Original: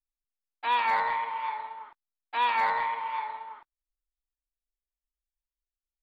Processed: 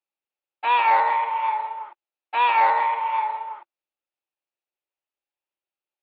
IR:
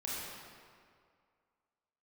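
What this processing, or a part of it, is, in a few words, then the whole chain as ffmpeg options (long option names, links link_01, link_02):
kitchen radio: -af "highpass=230,equalizer=frequency=230:width_type=q:width=4:gain=-5,equalizer=frequency=350:width_type=q:width=4:gain=9,equalizer=frequency=570:width_type=q:width=4:gain=9,equalizer=frequency=830:width_type=q:width=4:gain=9,equalizer=frequency=1300:width_type=q:width=4:gain=3,equalizer=frequency=2600:width_type=q:width=4:gain=8,lowpass=frequency=4200:width=0.5412,lowpass=frequency=4200:width=1.3066,volume=1.5dB"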